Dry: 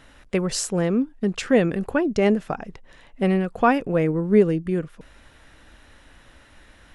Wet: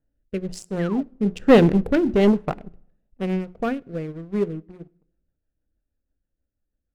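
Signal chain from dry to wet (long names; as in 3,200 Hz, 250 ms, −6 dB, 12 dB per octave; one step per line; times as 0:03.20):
adaptive Wiener filter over 41 samples
source passing by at 0:01.89, 6 m/s, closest 3.1 metres
low-shelf EQ 110 Hz +4.5 dB
mains-hum notches 60/120/180/240/300/360/420 Hz
leveller curve on the samples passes 2
in parallel at −8 dB: hard clipping −19.5 dBFS, distortion −8 dB
on the sum: rotating-speaker cabinet horn 1.1 Hz, later 6.3 Hz, at 0:04.26
sound drawn into the spectrogram fall, 0:00.79–0:01.03, 540–2,100 Hz −36 dBFS
on a send at −19.5 dB: convolution reverb RT60 0.75 s, pre-delay 3 ms
on the sum: expander for the loud parts 1.5 to 1, over −33 dBFS
level +2.5 dB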